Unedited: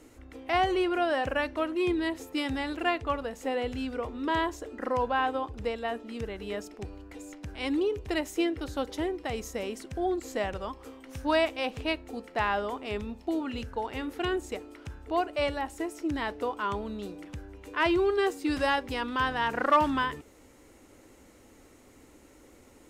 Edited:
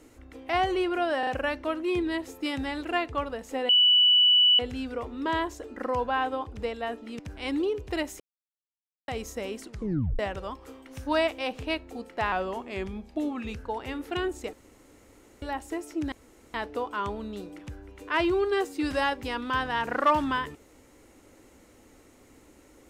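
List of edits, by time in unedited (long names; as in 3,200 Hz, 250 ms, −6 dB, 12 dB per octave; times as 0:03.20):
0:01.19: stutter 0.04 s, 3 plays
0:03.61: insert tone 2,960 Hz −16 dBFS 0.90 s
0:06.21–0:07.37: remove
0:08.38–0:09.26: silence
0:09.83: tape stop 0.54 s
0:12.50–0:13.65: play speed 92%
0:14.61–0:15.50: fill with room tone
0:16.20: splice in room tone 0.42 s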